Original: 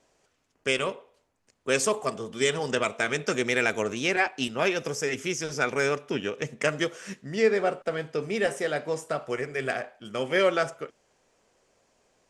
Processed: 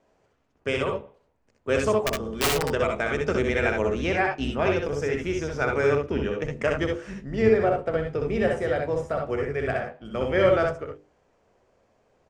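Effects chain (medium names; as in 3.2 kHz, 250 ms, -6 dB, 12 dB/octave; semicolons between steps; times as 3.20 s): octave divider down 2 oct, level -5 dB; low-pass 1.1 kHz 6 dB/octave; hum notches 50/100/150/200/250/300/350/400/450/500 Hz; 1.92–2.66 s: integer overflow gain 20.5 dB; early reflections 63 ms -4 dB, 77 ms -8.5 dB; trim +3 dB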